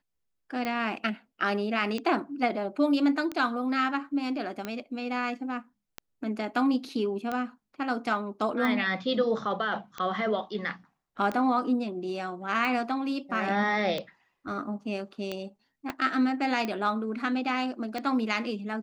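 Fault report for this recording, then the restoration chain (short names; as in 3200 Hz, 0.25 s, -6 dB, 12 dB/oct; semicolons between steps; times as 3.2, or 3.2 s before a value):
tick 45 rpm -18 dBFS
15.9 pop -18 dBFS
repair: de-click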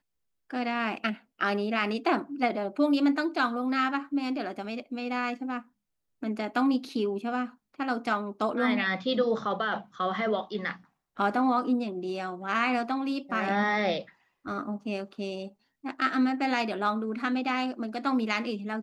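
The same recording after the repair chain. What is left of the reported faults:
15.9 pop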